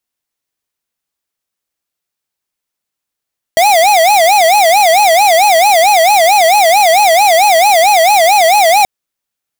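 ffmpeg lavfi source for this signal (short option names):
-f lavfi -i "aevalsrc='0.422*(2*lt(mod((744.5*t-100.5/(2*PI*4.5)*sin(2*PI*4.5*t)),1),0.5)-1)':d=5.28:s=44100"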